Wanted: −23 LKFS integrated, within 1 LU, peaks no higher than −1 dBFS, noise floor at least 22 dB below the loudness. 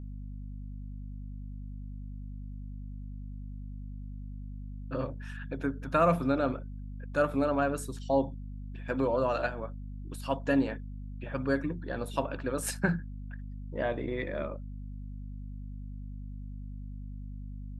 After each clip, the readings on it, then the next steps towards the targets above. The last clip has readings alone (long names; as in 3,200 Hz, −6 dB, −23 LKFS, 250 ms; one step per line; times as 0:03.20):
mains hum 50 Hz; hum harmonics up to 250 Hz; level of the hum −38 dBFS; integrated loudness −34.5 LKFS; sample peak −12.5 dBFS; target loudness −23.0 LKFS
→ mains-hum notches 50/100/150/200/250 Hz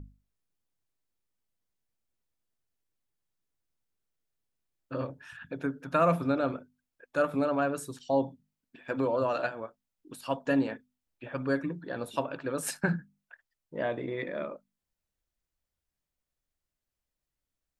mains hum none found; integrated loudness −31.5 LKFS; sample peak −13.0 dBFS; target loudness −23.0 LKFS
→ level +8.5 dB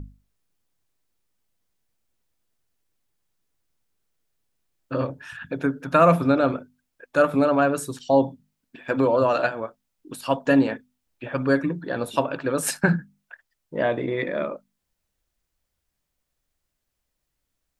integrated loudness −23.0 LKFS; sample peak −4.5 dBFS; background noise floor −79 dBFS